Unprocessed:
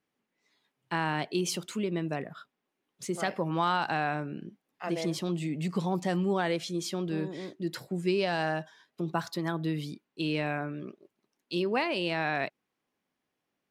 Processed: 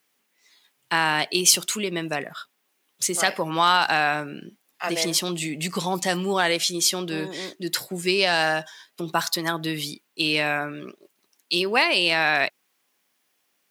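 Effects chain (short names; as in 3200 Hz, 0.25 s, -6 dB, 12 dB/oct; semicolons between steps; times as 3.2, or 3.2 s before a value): tilt +3.5 dB/oct; gain +8.5 dB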